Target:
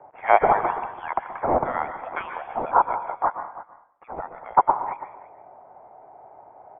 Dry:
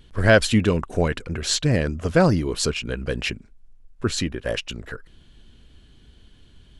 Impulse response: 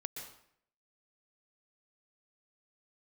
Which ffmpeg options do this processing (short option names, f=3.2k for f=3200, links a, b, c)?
-filter_complex "[0:a]asettb=1/sr,asplit=3[a][b][c];[a]atrim=end=3.024[d];[b]atrim=start=3.02:end=4.57,asetpts=PTS-STARTPTS,afade=t=in:d=0.004:c=qsin,afade=t=out:st=1.546:d=0.004:c=qsin,acompressor=threshold=-30dB:ratio=10[e];[c]atrim=start=4.566[f];[d][e]acrossfade=d=0.004:c1=hsin:c2=qsin[g];[g][f]acrossfade=d=0.004:c1=qsin:c2=hsin,highpass=f=3k:t=q:w=8.3,aecho=1:1:331:0.15,asplit=2[h][i];[1:a]atrim=start_sample=2205[j];[i][j]afir=irnorm=-1:irlink=0,volume=4.5dB[k];[h][k]amix=inputs=2:normalize=0,crystalizer=i=10:c=0,lowpass=f=3.2k:t=q:w=0.5098,lowpass=f=3.2k:t=q:w=0.6013,lowpass=f=3.2k:t=q:w=0.9,lowpass=f=3.2k:t=q:w=2.563,afreqshift=-3800,volume=-17.5dB"